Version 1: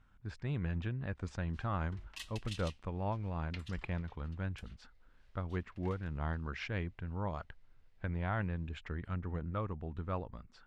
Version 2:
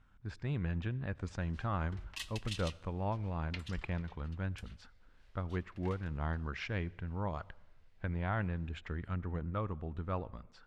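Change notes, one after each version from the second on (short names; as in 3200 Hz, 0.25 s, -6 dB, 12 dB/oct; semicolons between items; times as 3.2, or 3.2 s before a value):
background +3.0 dB; reverb: on, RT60 0.95 s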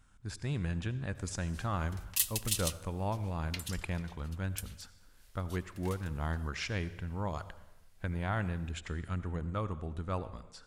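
speech: send +10.0 dB; master: remove LPF 2900 Hz 12 dB/oct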